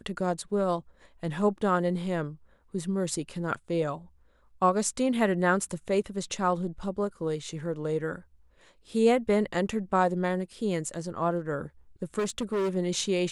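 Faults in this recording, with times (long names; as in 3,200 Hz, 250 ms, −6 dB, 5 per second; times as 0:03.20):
0:12.18–0:12.77: clipping −25 dBFS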